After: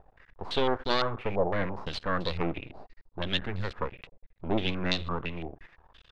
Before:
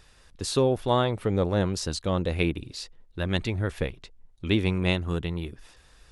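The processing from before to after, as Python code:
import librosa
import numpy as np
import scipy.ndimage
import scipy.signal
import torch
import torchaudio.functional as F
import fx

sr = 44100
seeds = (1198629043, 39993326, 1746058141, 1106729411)

y = fx.block_float(x, sr, bits=7)
y = fx.rev_schroeder(y, sr, rt60_s=0.78, comb_ms=33, drr_db=20.0)
y = np.maximum(y, 0.0)
y = fx.filter_held_lowpass(y, sr, hz=5.9, low_hz=740.0, high_hz=4200.0)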